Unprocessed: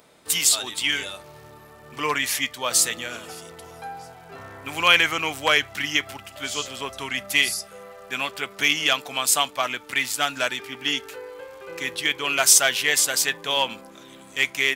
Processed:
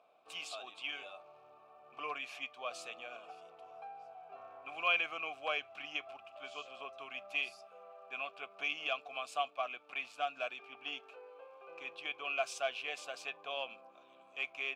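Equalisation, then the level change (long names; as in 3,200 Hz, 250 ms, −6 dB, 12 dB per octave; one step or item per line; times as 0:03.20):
formant filter a
dynamic equaliser 900 Hz, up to −7 dB, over −48 dBFS, Q 1.6
high-shelf EQ 9,500 Hz −9.5 dB
−1.5 dB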